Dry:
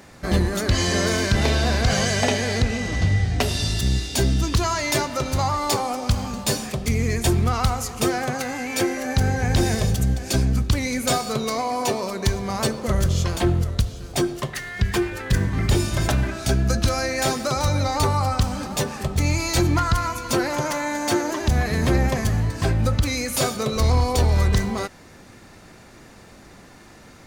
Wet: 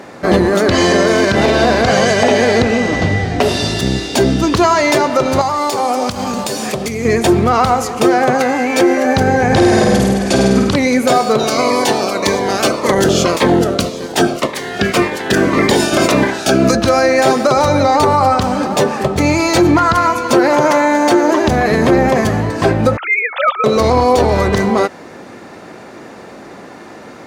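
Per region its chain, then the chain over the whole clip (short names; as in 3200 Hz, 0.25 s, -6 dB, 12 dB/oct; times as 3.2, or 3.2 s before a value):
5.41–7.05 high shelf 3700 Hz +10 dB + compressor, threshold -25 dBFS
9.47–10.76 steep low-pass 12000 Hz 96 dB/oct + flutter echo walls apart 8.7 m, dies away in 1.1 s
11.38–16.74 spectral limiter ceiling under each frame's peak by 17 dB + cascading phaser falling 1.8 Hz
22.97–23.64 sine-wave speech + HPF 860 Hz 24 dB/oct + hard clip -18 dBFS
whole clip: HPF 390 Hz 12 dB/oct; tilt -3.5 dB/oct; maximiser +15 dB; gain -1 dB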